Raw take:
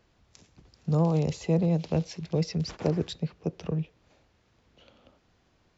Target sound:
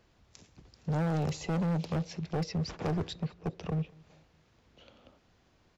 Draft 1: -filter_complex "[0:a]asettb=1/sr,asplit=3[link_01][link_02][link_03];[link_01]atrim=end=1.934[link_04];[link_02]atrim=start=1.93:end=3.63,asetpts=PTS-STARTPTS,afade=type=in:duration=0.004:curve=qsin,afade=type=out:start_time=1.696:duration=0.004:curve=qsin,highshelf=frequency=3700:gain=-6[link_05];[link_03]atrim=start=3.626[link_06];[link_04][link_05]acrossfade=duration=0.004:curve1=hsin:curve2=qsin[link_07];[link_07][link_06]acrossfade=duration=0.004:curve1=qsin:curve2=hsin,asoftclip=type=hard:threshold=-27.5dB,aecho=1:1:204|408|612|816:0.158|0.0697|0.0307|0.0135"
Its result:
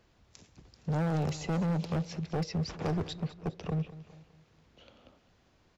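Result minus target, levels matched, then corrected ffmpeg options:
echo-to-direct +9.5 dB
-filter_complex "[0:a]asettb=1/sr,asplit=3[link_01][link_02][link_03];[link_01]atrim=end=1.934[link_04];[link_02]atrim=start=1.93:end=3.63,asetpts=PTS-STARTPTS,afade=type=in:duration=0.004:curve=qsin,afade=type=out:start_time=1.696:duration=0.004:curve=qsin,highshelf=frequency=3700:gain=-6[link_05];[link_03]atrim=start=3.626[link_06];[link_04][link_05]acrossfade=duration=0.004:curve1=hsin:curve2=qsin[link_07];[link_07][link_06]acrossfade=duration=0.004:curve1=qsin:curve2=hsin,asoftclip=type=hard:threshold=-27.5dB,aecho=1:1:204|408|612:0.0531|0.0234|0.0103"

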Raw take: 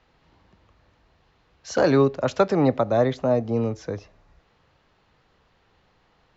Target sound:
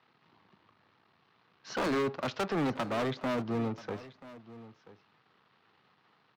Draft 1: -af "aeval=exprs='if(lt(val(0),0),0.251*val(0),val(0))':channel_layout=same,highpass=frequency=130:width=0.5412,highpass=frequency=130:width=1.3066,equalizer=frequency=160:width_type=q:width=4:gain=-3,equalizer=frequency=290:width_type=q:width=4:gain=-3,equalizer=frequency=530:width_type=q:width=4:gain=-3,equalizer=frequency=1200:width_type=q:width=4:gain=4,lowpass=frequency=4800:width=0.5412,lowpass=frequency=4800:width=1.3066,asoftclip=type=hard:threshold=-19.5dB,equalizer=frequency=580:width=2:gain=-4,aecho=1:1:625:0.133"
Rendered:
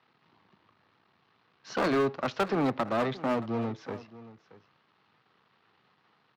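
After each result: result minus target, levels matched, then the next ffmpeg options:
echo 358 ms early; hard clipping: distortion −6 dB
-af "aeval=exprs='if(lt(val(0),0),0.251*val(0),val(0))':channel_layout=same,highpass=frequency=130:width=0.5412,highpass=frequency=130:width=1.3066,equalizer=frequency=160:width_type=q:width=4:gain=-3,equalizer=frequency=290:width_type=q:width=4:gain=-3,equalizer=frequency=530:width_type=q:width=4:gain=-3,equalizer=frequency=1200:width_type=q:width=4:gain=4,lowpass=frequency=4800:width=0.5412,lowpass=frequency=4800:width=1.3066,asoftclip=type=hard:threshold=-19.5dB,equalizer=frequency=580:width=2:gain=-4,aecho=1:1:983:0.133"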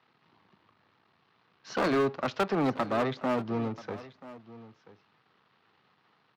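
hard clipping: distortion −6 dB
-af "aeval=exprs='if(lt(val(0),0),0.251*val(0),val(0))':channel_layout=same,highpass=frequency=130:width=0.5412,highpass=frequency=130:width=1.3066,equalizer=frequency=160:width_type=q:width=4:gain=-3,equalizer=frequency=290:width_type=q:width=4:gain=-3,equalizer=frequency=530:width_type=q:width=4:gain=-3,equalizer=frequency=1200:width_type=q:width=4:gain=4,lowpass=frequency=4800:width=0.5412,lowpass=frequency=4800:width=1.3066,asoftclip=type=hard:threshold=-26dB,equalizer=frequency=580:width=2:gain=-4,aecho=1:1:983:0.133"

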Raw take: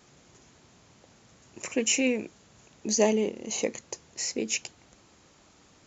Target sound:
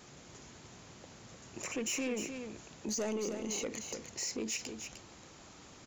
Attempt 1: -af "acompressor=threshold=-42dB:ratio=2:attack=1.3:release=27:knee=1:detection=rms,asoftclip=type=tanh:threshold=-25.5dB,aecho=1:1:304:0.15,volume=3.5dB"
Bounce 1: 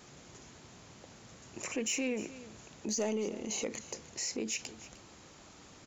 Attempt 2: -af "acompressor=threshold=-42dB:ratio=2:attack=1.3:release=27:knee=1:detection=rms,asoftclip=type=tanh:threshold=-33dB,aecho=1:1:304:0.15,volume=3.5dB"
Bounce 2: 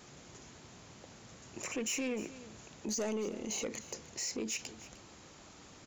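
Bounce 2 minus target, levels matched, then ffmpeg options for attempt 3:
echo-to-direct −9 dB
-af "acompressor=threshold=-42dB:ratio=2:attack=1.3:release=27:knee=1:detection=rms,asoftclip=type=tanh:threshold=-33dB,aecho=1:1:304:0.422,volume=3.5dB"

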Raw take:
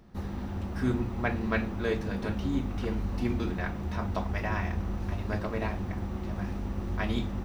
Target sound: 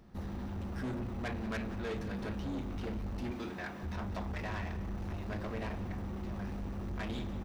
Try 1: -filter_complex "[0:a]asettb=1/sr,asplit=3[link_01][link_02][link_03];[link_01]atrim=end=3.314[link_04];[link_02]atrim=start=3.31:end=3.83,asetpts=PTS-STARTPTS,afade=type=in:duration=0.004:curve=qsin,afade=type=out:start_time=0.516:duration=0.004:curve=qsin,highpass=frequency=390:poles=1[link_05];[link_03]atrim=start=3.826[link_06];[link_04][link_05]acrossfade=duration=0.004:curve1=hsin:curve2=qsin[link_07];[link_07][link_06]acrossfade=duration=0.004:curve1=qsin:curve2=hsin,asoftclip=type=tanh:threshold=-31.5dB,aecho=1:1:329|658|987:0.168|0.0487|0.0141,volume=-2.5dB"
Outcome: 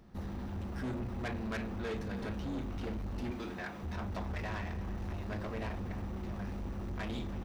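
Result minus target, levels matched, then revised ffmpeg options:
echo 149 ms late
-filter_complex "[0:a]asettb=1/sr,asplit=3[link_01][link_02][link_03];[link_01]atrim=end=3.314[link_04];[link_02]atrim=start=3.31:end=3.83,asetpts=PTS-STARTPTS,afade=type=in:duration=0.004:curve=qsin,afade=type=out:start_time=0.516:duration=0.004:curve=qsin,highpass=frequency=390:poles=1[link_05];[link_03]atrim=start=3.826[link_06];[link_04][link_05]acrossfade=duration=0.004:curve1=hsin:curve2=qsin[link_07];[link_07][link_06]acrossfade=duration=0.004:curve1=qsin:curve2=hsin,asoftclip=type=tanh:threshold=-31.5dB,aecho=1:1:180|360|540:0.168|0.0487|0.0141,volume=-2.5dB"

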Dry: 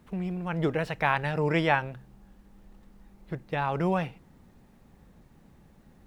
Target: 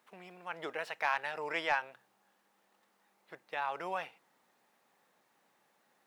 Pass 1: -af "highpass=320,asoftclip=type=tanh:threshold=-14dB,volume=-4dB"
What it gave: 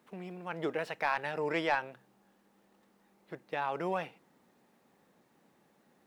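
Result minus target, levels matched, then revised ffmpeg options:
250 Hz band +9.5 dB
-af "highpass=720,asoftclip=type=tanh:threshold=-14dB,volume=-4dB"

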